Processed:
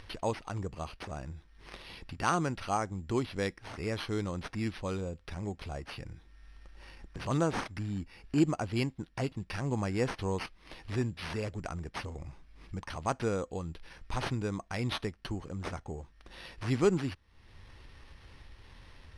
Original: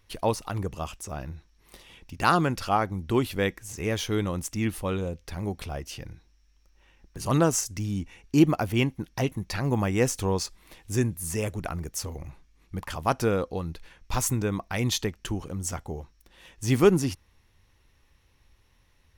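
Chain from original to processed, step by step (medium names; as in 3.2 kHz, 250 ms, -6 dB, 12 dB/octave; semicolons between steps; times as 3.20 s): careless resampling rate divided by 6×, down none, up hold; in parallel at 0 dB: compression, threshold -40 dBFS, peak gain reduction 25 dB; on the sum: Bessel low-pass 6.7 kHz, order 8; upward compressor, threshold -31 dBFS; trim -8 dB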